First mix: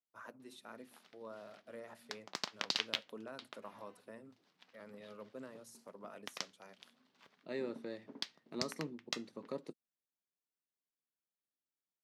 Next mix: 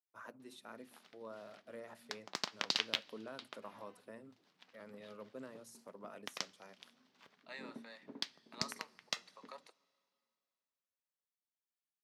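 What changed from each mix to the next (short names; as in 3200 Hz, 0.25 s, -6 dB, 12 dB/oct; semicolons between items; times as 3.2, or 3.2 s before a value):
second voice: add HPF 780 Hz 24 dB/oct; reverb: on, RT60 2.6 s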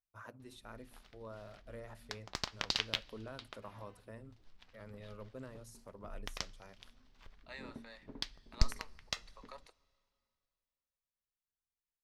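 master: remove HPF 180 Hz 24 dB/oct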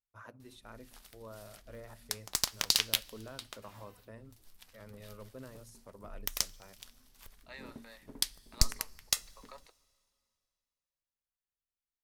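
background: remove air absorption 200 m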